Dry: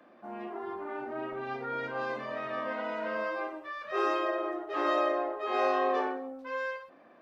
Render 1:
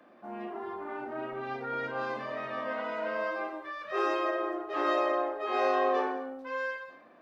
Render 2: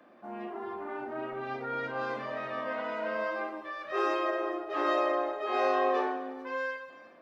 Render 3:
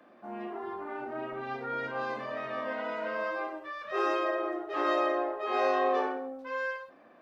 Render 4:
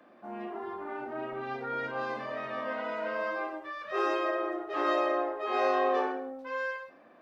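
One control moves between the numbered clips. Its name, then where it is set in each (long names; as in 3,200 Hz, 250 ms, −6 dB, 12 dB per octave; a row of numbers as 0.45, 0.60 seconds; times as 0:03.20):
reverb whose tail is shaped and stops, gate: 260, 450, 120, 170 milliseconds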